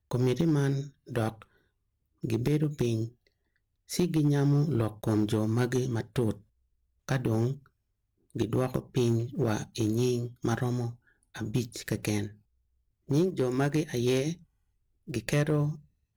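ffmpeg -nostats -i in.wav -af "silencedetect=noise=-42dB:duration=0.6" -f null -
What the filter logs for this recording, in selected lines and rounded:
silence_start: 1.42
silence_end: 2.24 | silence_duration: 0.81
silence_start: 3.09
silence_end: 3.90 | silence_duration: 0.81
silence_start: 6.37
silence_end: 7.09 | silence_duration: 0.71
silence_start: 7.57
silence_end: 8.35 | silence_duration: 0.79
silence_start: 12.28
silence_end: 13.09 | silence_duration: 0.80
silence_start: 14.34
silence_end: 15.08 | silence_duration: 0.74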